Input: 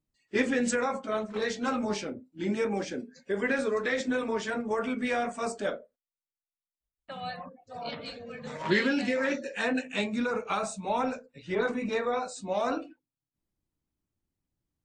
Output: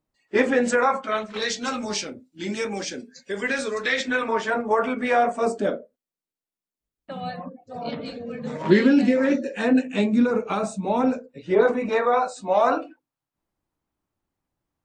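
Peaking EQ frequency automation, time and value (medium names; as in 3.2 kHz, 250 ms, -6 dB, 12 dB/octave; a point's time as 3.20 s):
peaking EQ +12 dB 2.5 oct
0.72 s 780 Hz
1.54 s 5.6 kHz
3.75 s 5.6 kHz
4.46 s 860 Hz
5.16 s 860 Hz
5.61 s 260 Hz
11.12 s 260 Hz
11.99 s 920 Hz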